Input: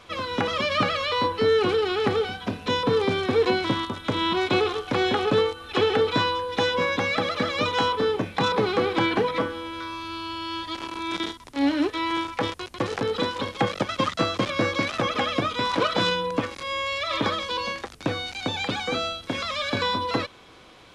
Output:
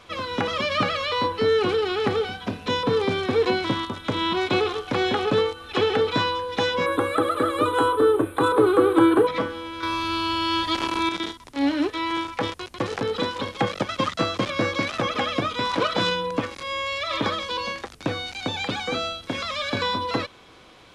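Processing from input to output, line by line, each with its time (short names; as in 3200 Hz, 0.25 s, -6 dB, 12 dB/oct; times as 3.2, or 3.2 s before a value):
6.86–9.27 EQ curve 120 Hz 0 dB, 210 Hz -13 dB, 310 Hz +11 dB, 760 Hz -2 dB, 1300 Hz +7 dB, 2100 Hz -9 dB, 3700 Hz -5 dB, 5700 Hz -23 dB, 8700 Hz +14 dB
9.83–11.09 gain +8 dB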